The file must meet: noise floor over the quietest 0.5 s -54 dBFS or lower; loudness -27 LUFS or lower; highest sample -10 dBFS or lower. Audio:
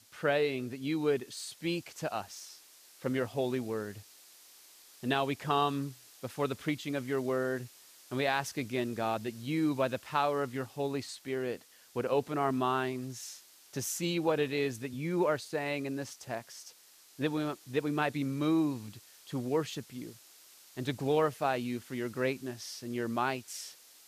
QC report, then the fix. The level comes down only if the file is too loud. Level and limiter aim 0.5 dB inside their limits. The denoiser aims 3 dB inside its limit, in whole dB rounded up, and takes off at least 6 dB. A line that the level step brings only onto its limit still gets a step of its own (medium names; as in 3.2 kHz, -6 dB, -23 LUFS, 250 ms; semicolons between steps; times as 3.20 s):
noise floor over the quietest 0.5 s -58 dBFS: pass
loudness -33.5 LUFS: pass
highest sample -16.0 dBFS: pass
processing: none needed